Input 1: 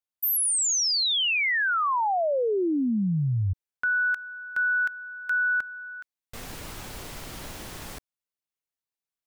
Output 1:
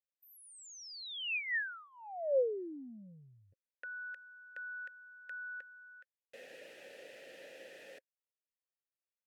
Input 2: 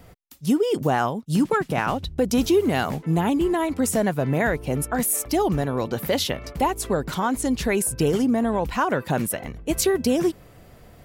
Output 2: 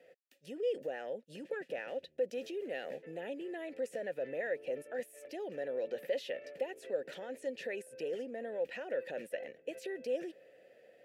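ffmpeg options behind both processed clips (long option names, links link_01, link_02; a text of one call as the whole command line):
ffmpeg -i in.wav -filter_complex "[0:a]highpass=190,highshelf=frequency=6400:gain=9.5,asplit=2[link_01][link_02];[link_02]alimiter=limit=-17.5dB:level=0:latency=1:release=39,volume=-1.5dB[link_03];[link_01][link_03]amix=inputs=2:normalize=0,acompressor=threshold=-20dB:ratio=6:attack=5.8:release=26:knee=6:detection=rms,asplit=3[link_04][link_05][link_06];[link_04]bandpass=frequency=530:width_type=q:width=8,volume=0dB[link_07];[link_05]bandpass=frequency=1840:width_type=q:width=8,volume=-6dB[link_08];[link_06]bandpass=frequency=2480:width_type=q:width=8,volume=-9dB[link_09];[link_07][link_08][link_09]amix=inputs=3:normalize=0,volume=-4.5dB" -ar 44100 -c:a libvorbis -b:a 128k out.ogg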